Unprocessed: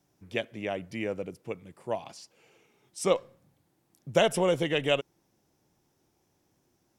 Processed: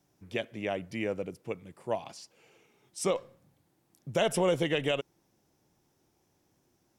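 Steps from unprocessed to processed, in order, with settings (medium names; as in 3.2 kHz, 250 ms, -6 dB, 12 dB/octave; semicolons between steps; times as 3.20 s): peak limiter -17 dBFS, peak gain reduction 7 dB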